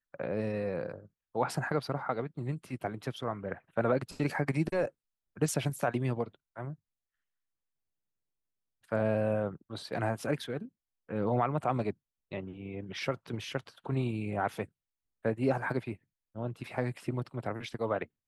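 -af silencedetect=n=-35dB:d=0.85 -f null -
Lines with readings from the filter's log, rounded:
silence_start: 6.71
silence_end: 8.92 | silence_duration: 2.21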